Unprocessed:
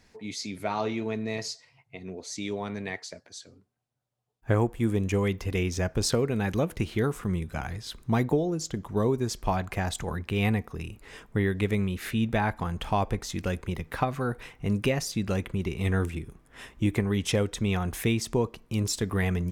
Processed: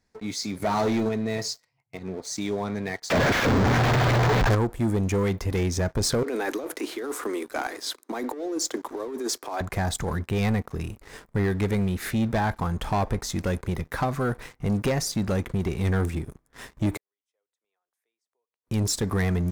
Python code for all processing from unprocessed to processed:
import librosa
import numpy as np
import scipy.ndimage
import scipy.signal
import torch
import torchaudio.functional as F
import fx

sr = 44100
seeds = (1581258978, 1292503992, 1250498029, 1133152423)

y = fx.chain(x, sr, fx.highpass(hz=98.0, slope=6),
    fx.bass_treble(bass_db=5, treble_db=5),
    fx.leveller(passes=1), at=(0.62, 1.09))
y = fx.chain(y, sr, fx.delta_mod(bps=16000, step_db=-25.5),
    fx.leveller(passes=3), at=(3.1, 4.55))
y = fx.chain(y, sr, fx.steep_highpass(hz=260.0, slope=72),
    fx.over_compress(threshold_db=-34.0, ratio=-1.0), at=(6.23, 9.61))
y = fx.chain(y, sr, fx.highpass(hz=480.0, slope=24),
    fx.gate_flip(shuts_db=-34.0, range_db=-42),
    fx.band_squash(depth_pct=70), at=(16.97, 18.67))
y = fx.leveller(y, sr, passes=3)
y = fx.peak_eq(y, sr, hz=2800.0, db=-7.0, octaves=0.62)
y = y * librosa.db_to_amplitude(-6.0)